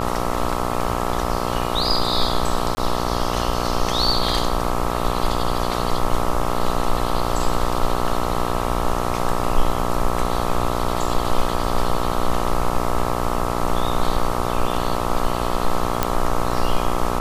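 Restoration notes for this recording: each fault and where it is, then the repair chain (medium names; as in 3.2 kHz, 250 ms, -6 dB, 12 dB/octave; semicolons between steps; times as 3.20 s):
buzz 60 Hz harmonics 22 -24 dBFS
2.75–2.77 s: dropout 20 ms
16.03 s: pop -3 dBFS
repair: de-click; de-hum 60 Hz, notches 22; interpolate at 2.75 s, 20 ms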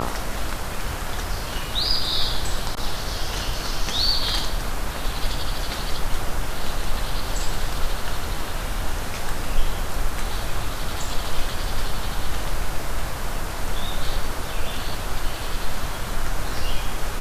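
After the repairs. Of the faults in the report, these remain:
nothing left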